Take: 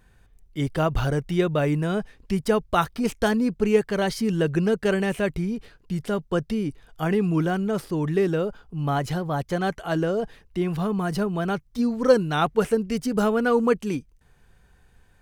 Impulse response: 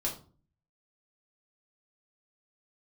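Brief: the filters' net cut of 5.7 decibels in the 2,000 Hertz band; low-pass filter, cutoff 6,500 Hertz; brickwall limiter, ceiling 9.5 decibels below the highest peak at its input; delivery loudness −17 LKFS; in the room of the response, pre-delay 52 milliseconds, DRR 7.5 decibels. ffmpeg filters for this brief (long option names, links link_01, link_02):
-filter_complex "[0:a]lowpass=6500,equalizer=frequency=2000:width_type=o:gain=-8.5,alimiter=limit=-16dB:level=0:latency=1,asplit=2[link_01][link_02];[1:a]atrim=start_sample=2205,adelay=52[link_03];[link_02][link_03]afir=irnorm=-1:irlink=0,volume=-11.5dB[link_04];[link_01][link_04]amix=inputs=2:normalize=0,volume=8.5dB"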